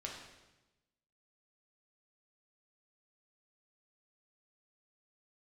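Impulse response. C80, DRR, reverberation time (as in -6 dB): 5.5 dB, -2.0 dB, 1.0 s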